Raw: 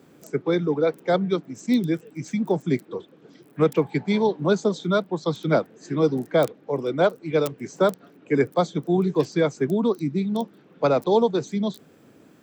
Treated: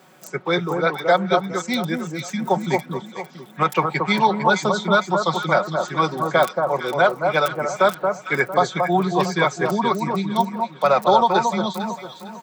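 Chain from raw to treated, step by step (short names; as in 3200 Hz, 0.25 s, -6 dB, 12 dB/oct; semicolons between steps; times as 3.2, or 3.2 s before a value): resonant low shelf 540 Hz -9.5 dB, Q 1.5; comb 5.4 ms, depth 58%; dynamic EQ 1500 Hz, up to +5 dB, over -34 dBFS, Q 0.86; limiter -13.5 dBFS, peak gain reduction 9 dB; echo with dull and thin repeats by turns 0.227 s, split 1300 Hz, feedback 56%, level -4 dB; gain +6.5 dB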